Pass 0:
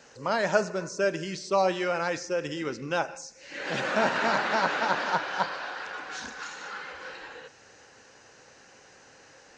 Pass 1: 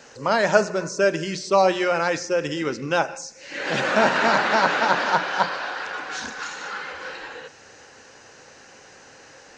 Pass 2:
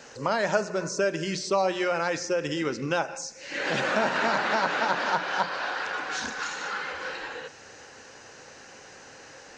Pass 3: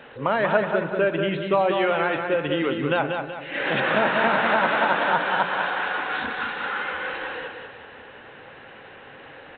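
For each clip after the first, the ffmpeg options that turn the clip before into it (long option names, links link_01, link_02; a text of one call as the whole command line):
ffmpeg -i in.wav -af "bandreject=frequency=60:width_type=h:width=6,bandreject=frequency=120:width_type=h:width=6,bandreject=frequency=180:width_type=h:width=6,volume=6.5dB" out.wav
ffmpeg -i in.wav -af "acompressor=threshold=-26dB:ratio=2" out.wav
ffmpeg -i in.wav -af "aecho=1:1:189|378|567|756|945:0.531|0.228|0.0982|0.0422|0.0181,volume=3.5dB" -ar 8000 -c:a pcm_alaw out.wav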